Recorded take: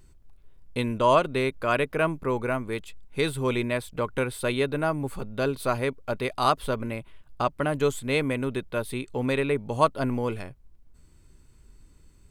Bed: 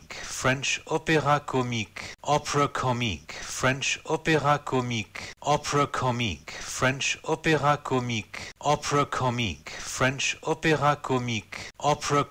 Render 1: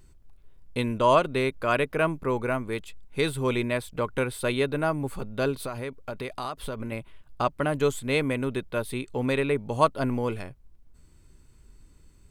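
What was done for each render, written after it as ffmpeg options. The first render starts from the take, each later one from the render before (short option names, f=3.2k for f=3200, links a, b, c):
-filter_complex "[0:a]asettb=1/sr,asplit=3[a][b][c];[a]atrim=end=5.554[d];[b]atrim=start=5.55:end=6.92,asetpts=PTS-STARTPTS,afade=t=in:d=0.004:c=qsin,afade=t=out:st=1.366:d=0.004:c=qsin,acompressor=threshold=-29dB:ratio=6:attack=3.2:release=140:knee=1:detection=peak[e];[c]atrim=start=6.916[f];[d][e]acrossfade=d=0.004:c1=hsin:c2=qsin[g];[g][f]acrossfade=d=0.004:c1=qsin:c2=hsin"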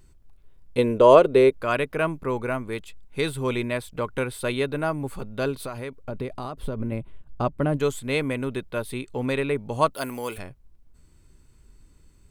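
-filter_complex "[0:a]asettb=1/sr,asplit=3[a][b][c];[a]atrim=end=0.784[d];[b]atrim=start=0.78:end=1.54,asetpts=PTS-STARTPTS,afade=t=in:d=0.004:c=qsin,afade=t=out:st=0.756:d=0.004:c=qsin,equalizer=f=450:w=1.5:g=14[e];[c]atrim=start=1.536[f];[d][e]acrossfade=d=0.004:c1=hsin:c2=qsin[g];[g][f]acrossfade=d=0.004:c1=qsin:c2=hsin,asplit=3[h][i][j];[h]afade=t=out:st=6.03:d=0.02[k];[i]tiltshelf=f=700:g=7,afade=t=in:st=6.03:d=0.02,afade=t=out:st=7.76:d=0.02[l];[j]afade=t=in:st=7.76:d=0.02[m];[k][l][m]amix=inputs=3:normalize=0,asettb=1/sr,asplit=3[n][o][p];[n]atrim=end=9.944[q];[o]atrim=start=9.94:end=10.38,asetpts=PTS-STARTPTS,afade=t=in:d=0.004:c=qsin,afade=t=out:st=0.436:d=0.004:c=qsin,aemphasis=mode=production:type=riaa[r];[p]atrim=start=10.376[s];[q][r]acrossfade=d=0.004:c1=hsin:c2=qsin[t];[t][s]acrossfade=d=0.004:c1=qsin:c2=hsin"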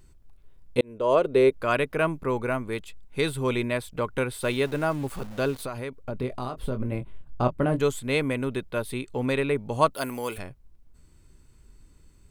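-filter_complex "[0:a]asplit=3[a][b][c];[a]afade=t=out:st=4.41:d=0.02[d];[b]aeval=exprs='val(0)*gte(abs(val(0)),0.01)':c=same,afade=t=in:st=4.41:d=0.02,afade=t=out:st=5.61:d=0.02[e];[c]afade=t=in:st=5.61:d=0.02[f];[d][e][f]amix=inputs=3:normalize=0,asettb=1/sr,asplit=3[g][h][i];[g]atrim=end=6.174[j];[h]atrim=start=6.17:end=7.82,asetpts=PTS-STARTPTS,afade=t=in:d=0.004:c=qsin,afade=t=out:st=1.646:d=0.004:c=qsin,asplit=2[k][l];[l]adelay=24,volume=-8dB[m];[k][m]amix=inputs=2:normalize=0,atrim=end_sample=72765[n];[i]atrim=start=7.816[o];[j][n]acrossfade=d=0.004:c1=hsin:c2=qsin[p];[p][o]acrossfade=d=0.004:c1=qsin:c2=hsin,asplit=2[q][r];[q]atrim=end=0.81,asetpts=PTS-STARTPTS,afade=t=out:st=0.806:d=0.004:c=hsin[s];[r]atrim=start=0.81,asetpts=PTS-STARTPTS,afade=t=in:d=0.82[t];[s][t]concat=n=2:v=0:a=1"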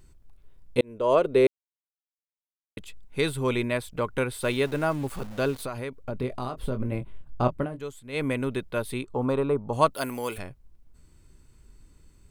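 -filter_complex "[0:a]asettb=1/sr,asplit=3[a][b][c];[a]atrim=end=9.034[d];[b]atrim=start=9.03:end=9.73,asetpts=PTS-STARTPTS,afade=t=in:d=0.004:c=qsin,afade=t=out:st=0.696:d=0.004:c=qsin,highshelf=f=1.5k:t=q:w=3:g=-8.5[e];[c]atrim=start=9.726[f];[d][e]acrossfade=d=0.004:c1=hsin:c2=qsin[g];[g][f]acrossfade=d=0.004:c1=qsin:c2=hsin,asplit=5[h][i][j][k][l];[h]atrim=end=1.47,asetpts=PTS-STARTPTS,afade=t=out:st=1.466:d=0.004:c=hsin[m];[i]atrim=start=1.47:end=2.77,asetpts=PTS-STARTPTS,volume=0[n];[j]atrim=start=2.77:end=7.69,asetpts=PTS-STARTPTS,afade=t=in:d=0.004:c=hsin,afade=t=out:st=4.8:d=0.12:silence=0.237137[o];[k]atrim=start=7.69:end=8.12,asetpts=PTS-STARTPTS,volume=-12.5dB[p];[l]atrim=start=8.12,asetpts=PTS-STARTPTS,afade=t=in:d=0.12:silence=0.237137[q];[m][n][o][p][q]concat=n=5:v=0:a=1"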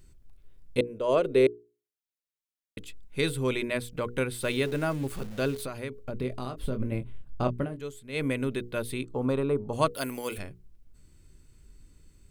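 -af "equalizer=f=920:t=o:w=1.2:g=-6.5,bandreject=f=60:t=h:w=6,bandreject=f=120:t=h:w=6,bandreject=f=180:t=h:w=6,bandreject=f=240:t=h:w=6,bandreject=f=300:t=h:w=6,bandreject=f=360:t=h:w=6,bandreject=f=420:t=h:w=6,bandreject=f=480:t=h:w=6"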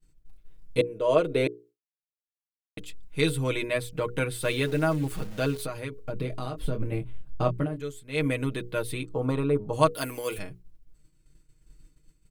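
-af "agate=range=-33dB:threshold=-46dB:ratio=3:detection=peak,aecho=1:1:6.4:0.72"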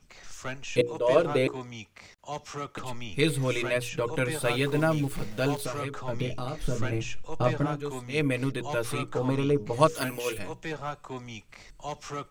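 -filter_complex "[1:a]volume=-12.5dB[a];[0:a][a]amix=inputs=2:normalize=0"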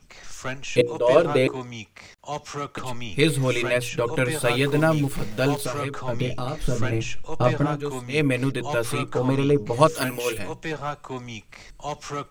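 -af "volume=5dB,alimiter=limit=-3dB:level=0:latency=1"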